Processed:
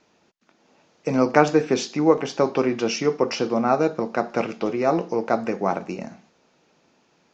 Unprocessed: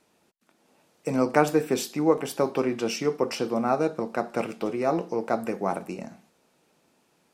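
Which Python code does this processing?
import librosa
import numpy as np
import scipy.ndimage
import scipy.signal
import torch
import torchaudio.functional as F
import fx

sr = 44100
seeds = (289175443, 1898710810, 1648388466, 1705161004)

y = scipy.signal.sosfilt(scipy.signal.cheby1(6, 1.0, 6800.0, 'lowpass', fs=sr, output='sos'), x)
y = y * librosa.db_to_amplitude(5.0)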